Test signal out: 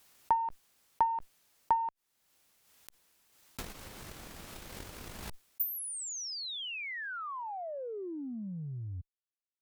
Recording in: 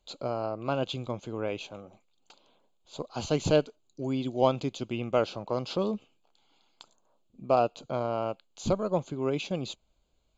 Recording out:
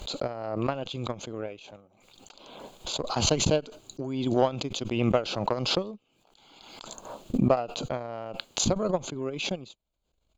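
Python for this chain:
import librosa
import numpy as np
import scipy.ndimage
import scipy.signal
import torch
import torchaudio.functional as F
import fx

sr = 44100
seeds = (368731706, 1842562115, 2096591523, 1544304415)

y = fx.transient(x, sr, attack_db=12, sustain_db=-6)
y = fx.cheby_harmonics(y, sr, harmonics=(4,), levels_db=(-29,), full_scale_db=0.5)
y = fx.pre_swell(y, sr, db_per_s=37.0)
y = y * librosa.db_to_amplitude(-8.5)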